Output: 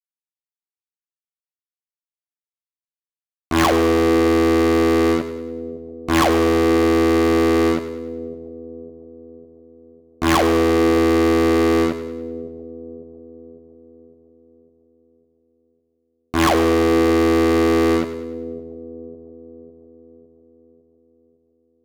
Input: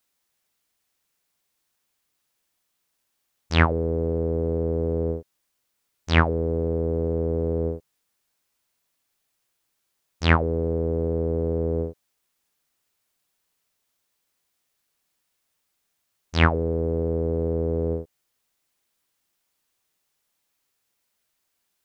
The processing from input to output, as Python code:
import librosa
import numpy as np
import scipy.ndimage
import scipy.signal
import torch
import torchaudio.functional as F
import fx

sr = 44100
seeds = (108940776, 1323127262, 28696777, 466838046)

y = fx.cabinet(x, sr, low_hz=160.0, low_slope=12, high_hz=2600.0, hz=(170.0, 310.0, 470.0, 710.0, 1100.0), db=(-4, 8, -4, 6, 10))
y = fx.fuzz(y, sr, gain_db=36.0, gate_db=-43.0)
y = fx.echo_split(y, sr, split_hz=490.0, low_ms=554, high_ms=100, feedback_pct=52, wet_db=-12)